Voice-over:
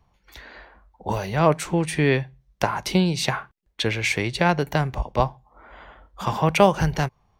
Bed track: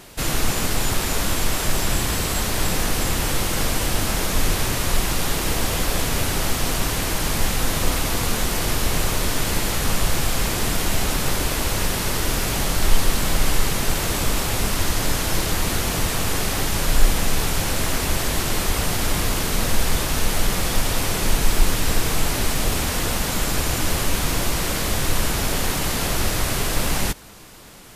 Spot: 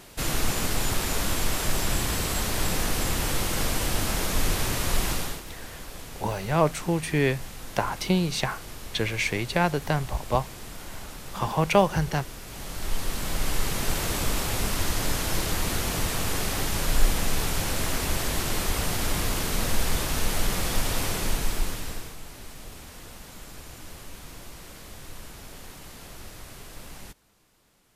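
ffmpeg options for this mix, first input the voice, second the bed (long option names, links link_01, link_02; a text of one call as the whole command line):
ffmpeg -i stem1.wav -i stem2.wav -filter_complex "[0:a]adelay=5150,volume=-3.5dB[link_01];[1:a]volume=9dB,afade=type=out:start_time=5.1:duration=0.33:silence=0.199526,afade=type=in:start_time=12.45:duration=1.49:silence=0.211349,afade=type=out:start_time=21.04:duration=1.12:silence=0.158489[link_02];[link_01][link_02]amix=inputs=2:normalize=0" out.wav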